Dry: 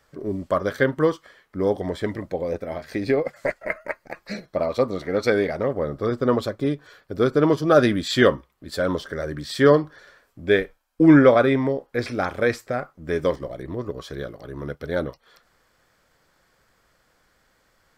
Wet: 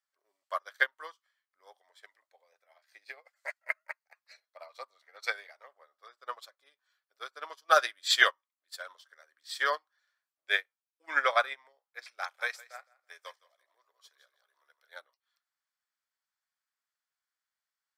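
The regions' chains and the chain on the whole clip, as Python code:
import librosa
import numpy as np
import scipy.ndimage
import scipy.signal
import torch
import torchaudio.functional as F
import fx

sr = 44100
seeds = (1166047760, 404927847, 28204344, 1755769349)

y = fx.chain(x, sr, fx.bass_treble(bass_db=-12, treble_db=3),
    fx.echo_feedback(ms=165, feedback_pct=23, wet_db=-9.0), at=(12.23, 14.94))
y = scipy.signal.sosfilt(scipy.signal.butter(4, 780.0, 'highpass', fs=sr, output='sos'), y)
y = fx.high_shelf(y, sr, hz=2100.0, db=8.0)
y = fx.upward_expand(y, sr, threshold_db=-37.0, expansion=2.5)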